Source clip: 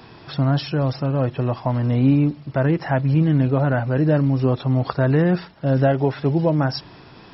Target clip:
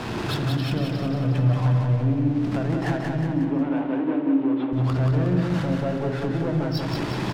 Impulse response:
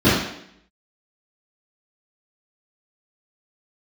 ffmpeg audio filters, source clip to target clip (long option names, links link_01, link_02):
-filter_complex "[0:a]aeval=exprs='val(0)+0.5*0.0473*sgn(val(0))':channel_layout=same,asettb=1/sr,asplit=3[link_01][link_02][link_03];[link_01]atrim=end=1.114[link_04];[link_02]atrim=start=1.11:end=2.16,asetpts=PTS-STARTPTS,afade=type=in:duration=0.004:curve=qsin,afade=type=out:start_time=1.046:duration=0.004:curve=qsin,aecho=1:1:6.8:0.87,atrim=end_sample=46305[link_05];[link_03]atrim=start=2.156[link_06];[link_04][link_05]acrossfade=duration=0.004:curve1=hsin:curve2=qsin[link_07];[link_07][link_06]acrossfade=duration=0.004:curve1=qsin:curve2=hsin,acompressor=threshold=-23dB:ratio=12,asoftclip=type=hard:threshold=-24dB,adynamicsmooth=sensitivity=5:basefreq=1800,asettb=1/sr,asplit=3[link_08][link_09][link_10];[link_08]atrim=end=3.244[link_11];[link_09]atrim=start=3.24:end=4.73,asetpts=PTS-STARTPTS,afade=type=in:duration=0.004:curve=qsin,afade=type=out:start_time=1.486:duration=0.004:curve=qsin,highpass=frequency=260:width=0.5412,highpass=frequency=260:width=1.3066,equalizer=frequency=280:width_type=q:width=4:gain=7,equalizer=frequency=640:width_type=q:width=4:gain=-4,equalizer=frequency=920:width_type=q:width=4:gain=5,equalizer=frequency=1400:width_type=q:width=4:gain=-4,lowpass=frequency=3200:width=0.5412,lowpass=frequency=3200:width=1.3066[link_12];[link_10]atrim=start=4.726[link_13];[link_11][link_12]acrossfade=duration=0.004:curve1=hsin:curve2=qsin[link_14];[link_14][link_13]acrossfade=duration=0.004:curve1=qsin:curve2=hsin,aecho=1:1:181|362|543|724|905|1086|1267:0.631|0.341|0.184|0.0994|0.0537|0.029|0.0156,asplit=2[link_15][link_16];[1:a]atrim=start_sample=2205,adelay=34[link_17];[link_16][link_17]afir=irnorm=-1:irlink=0,volume=-31.5dB[link_18];[link_15][link_18]amix=inputs=2:normalize=0"